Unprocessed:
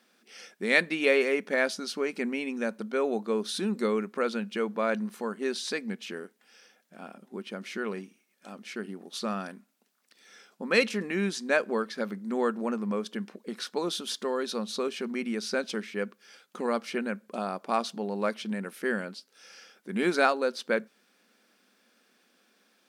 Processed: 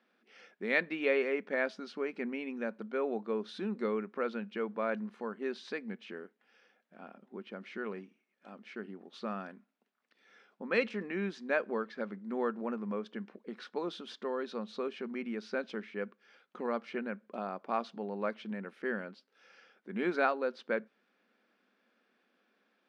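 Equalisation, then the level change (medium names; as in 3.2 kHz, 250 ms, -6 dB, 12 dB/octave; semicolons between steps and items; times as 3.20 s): band-pass 160–2600 Hz; -5.5 dB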